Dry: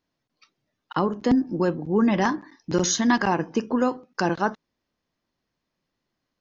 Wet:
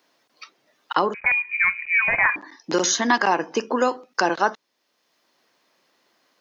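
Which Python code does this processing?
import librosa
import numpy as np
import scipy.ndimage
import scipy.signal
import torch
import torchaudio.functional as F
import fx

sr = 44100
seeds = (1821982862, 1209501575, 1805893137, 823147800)

y = scipy.signal.sosfilt(scipy.signal.butter(2, 430.0, 'highpass', fs=sr, output='sos'), x)
y = fx.freq_invert(y, sr, carrier_hz=2700, at=(1.14, 2.36))
y = fx.band_squash(y, sr, depth_pct=40)
y = y * librosa.db_to_amplitude(5.5)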